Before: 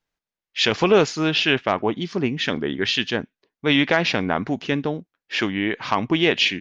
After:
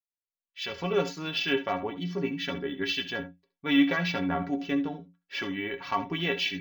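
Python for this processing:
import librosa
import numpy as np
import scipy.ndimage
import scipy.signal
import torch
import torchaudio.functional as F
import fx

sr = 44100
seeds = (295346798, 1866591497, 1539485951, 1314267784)

p1 = fx.fade_in_head(x, sr, length_s=1.3)
p2 = fx.stiff_resonator(p1, sr, f0_hz=83.0, decay_s=0.29, stiffness=0.03)
p3 = p2 + fx.room_early_taps(p2, sr, ms=(68, 79), db=(-15.0, -17.5), dry=0)
y = np.interp(np.arange(len(p3)), np.arange(len(p3))[::2], p3[::2])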